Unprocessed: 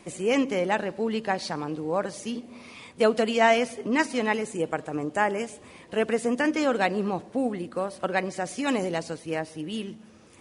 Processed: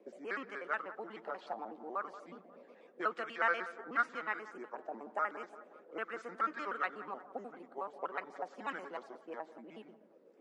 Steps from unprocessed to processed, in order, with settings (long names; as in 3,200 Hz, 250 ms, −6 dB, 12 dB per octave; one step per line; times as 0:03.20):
pitch shifter gated in a rhythm −5 semitones, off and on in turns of 61 ms
Butterworth high-pass 190 Hz 36 dB per octave
parametric band 890 Hz −6 dB 1 octave
envelope filter 480–1,300 Hz, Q 4.6, up, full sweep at −24 dBFS
bucket-brigade delay 180 ms, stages 2,048, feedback 49%, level −14.5 dB
level +3 dB